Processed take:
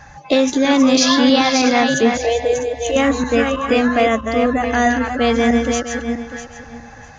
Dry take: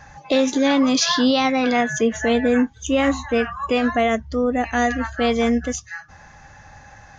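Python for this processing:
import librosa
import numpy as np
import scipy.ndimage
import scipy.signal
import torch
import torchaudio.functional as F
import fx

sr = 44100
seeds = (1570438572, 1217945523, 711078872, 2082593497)

y = fx.reverse_delay_fb(x, sr, ms=324, feedback_pct=44, wet_db=-5.0)
y = fx.fixed_phaser(y, sr, hz=560.0, stages=4, at=(2.17, 2.96))
y = y * librosa.db_to_amplitude(3.0)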